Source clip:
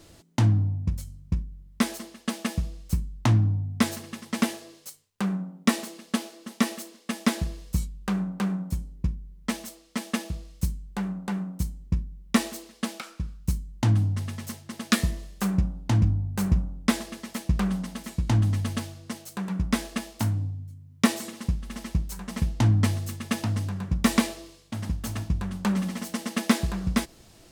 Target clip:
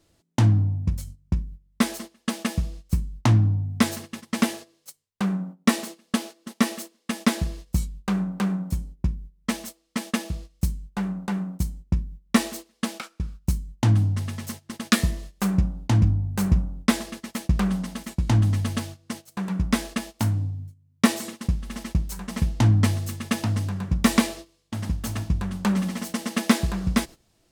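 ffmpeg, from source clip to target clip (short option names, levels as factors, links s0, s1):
-af "agate=range=0.178:threshold=0.0112:ratio=16:detection=peak,volume=1.33"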